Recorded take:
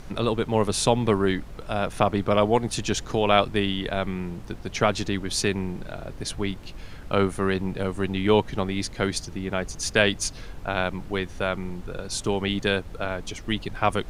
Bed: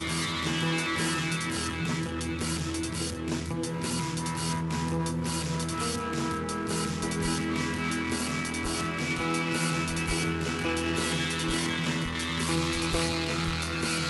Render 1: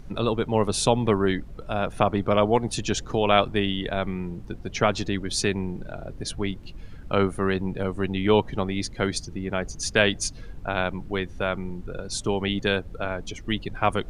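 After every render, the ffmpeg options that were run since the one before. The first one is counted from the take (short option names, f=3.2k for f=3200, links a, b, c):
-af "afftdn=nr=10:nf=-40"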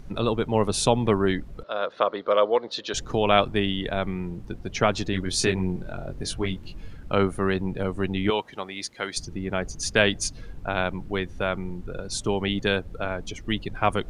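-filter_complex "[0:a]asettb=1/sr,asplit=3[a][b][c];[a]atrim=end=1.634[d];[b]atrim=start=1.63:end=2.94,asetpts=PTS-STARTPTS,afade=t=in:d=0.004:c=qsin,afade=t=out:st=1.306:d=0.004:c=qsin,highpass=500,equalizer=f=520:t=q:w=4:g=8,equalizer=f=770:t=q:w=4:g=-8,equalizer=f=1.2k:t=q:w=4:g=3,equalizer=f=2.5k:t=q:w=4:g=-7,equalizer=f=4k:t=q:w=4:g=7,lowpass=f=4.6k:w=0.5412,lowpass=f=4.6k:w=1.3066[e];[c]atrim=start=2.936[f];[d][e]acrossfade=d=0.004:c1=hsin:c2=qsin[g];[g][f]acrossfade=d=0.004:c1=qsin:c2=hsin,asettb=1/sr,asplit=3[h][i][j];[h]atrim=end=5.114[k];[i]atrim=start=5.11:end=6.93,asetpts=PTS-STARTPTS,afade=t=in:d=0.004:c=qsin,afade=t=out:st=1.816:d=0.004:c=qsin,asplit=2[l][m];[m]adelay=22,volume=-4dB[n];[l][n]amix=inputs=2:normalize=0,atrim=end_sample=80262[o];[j]atrim=start=6.926[p];[k][o]acrossfade=d=0.004:c1=hsin:c2=qsin[q];[q][p]acrossfade=d=0.004:c1=qsin:c2=hsin,asettb=1/sr,asplit=3[r][s][t];[r]atrim=end=8.304[u];[s]atrim=start=8.3:end=9.17,asetpts=PTS-STARTPTS,afade=t=in:d=0.004:c=qsin,afade=t=out:st=0.866:d=0.004:c=qsin,highpass=f=960:p=1[v];[t]atrim=start=9.166[w];[u][v]acrossfade=d=0.004:c1=hsin:c2=qsin[x];[x][w]acrossfade=d=0.004:c1=qsin:c2=hsin"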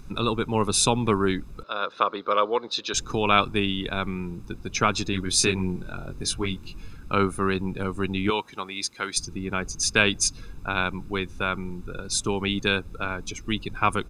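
-af "bass=f=250:g=-5,treble=f=4k:g=5,aecho=1:1:0.8:0.58"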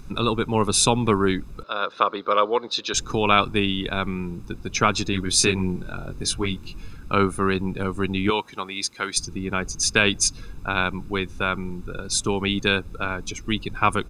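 -af "volume=2.5dB,alimiter=limit=-3dB:level=0:latency=1"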